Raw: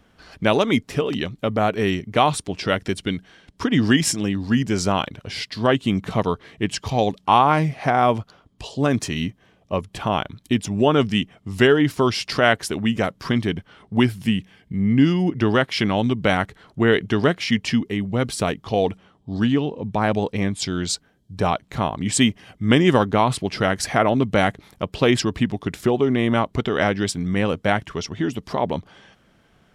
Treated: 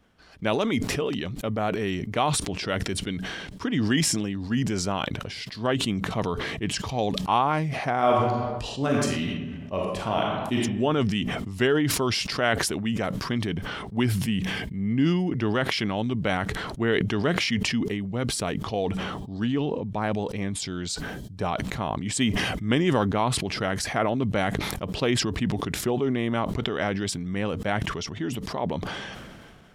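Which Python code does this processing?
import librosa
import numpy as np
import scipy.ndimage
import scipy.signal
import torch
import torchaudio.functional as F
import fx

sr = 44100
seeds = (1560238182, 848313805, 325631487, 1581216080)

y = fx.reverb_throw(x, sr, start_s=7.96, length_s=2.63, rt60_s=1.0, drr_db=-1.0)
y = fx.sustainer(y, sr, db_per_s=27.0)
y = F.gain(torch.from_numpy(y), -7.5).numpy()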